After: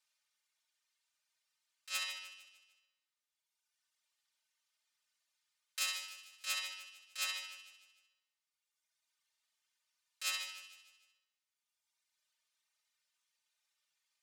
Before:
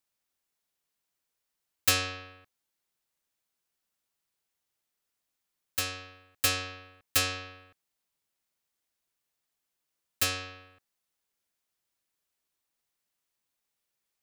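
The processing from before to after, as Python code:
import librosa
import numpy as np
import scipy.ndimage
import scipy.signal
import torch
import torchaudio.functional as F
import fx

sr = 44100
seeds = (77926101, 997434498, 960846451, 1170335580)

y = fx.dereverb_blind(x, sr, rt60_s=1.6)
y = fx.over_compress(y, sr, threshold_db=-31.0, ratio=-0.5)
y = scipy.signal.sosfilt(scipy.signal.butter(2, 670.0, 'highpass', fs=sr, output='sos'), y)
y = fx.spacing_loss(y, sr, db_at_10k=24)
y = fx.room_flutter(y, sr, wall_m=11.3, rt60_s=0.57)
y = 10.0 ** (-39.0 / 20.0) * np.tanh(y / 10.0 ** (-39.0 / 20.0))
y = np.diff(y, prepend=0.0)
y = y + 0.85 * np.pad(y, (int(3.3 * sr / 1000.0), 0))[:len(y)]
y = fx.echo_feedback(y, sr, ms=151, feedback_pct=47, wet_db=-11.5)
y = y * 10.0 ** (13.0 / 20.0)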